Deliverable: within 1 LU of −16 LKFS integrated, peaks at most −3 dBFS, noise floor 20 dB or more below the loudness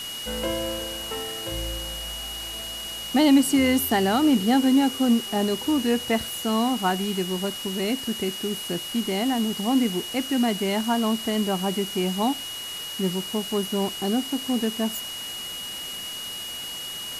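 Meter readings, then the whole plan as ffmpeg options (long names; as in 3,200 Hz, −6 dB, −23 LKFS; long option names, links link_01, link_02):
interfering tone 2,900 Hz; level of the tone −33 dBFS; background noise floor −34 dBFS; target noise floor −45 dBFS; integrated loudness −25.0 LKFS; sample peak −8.5 dBFS; target loudness −16.0 LKFS
→ -af "bandreject=frequency=2900:width=30"
-af "afftdn=noise_reduction=11:noise_floor=-34"
-af "volume=9dB,alimiter=limit=-3dB:level=0:latency=1"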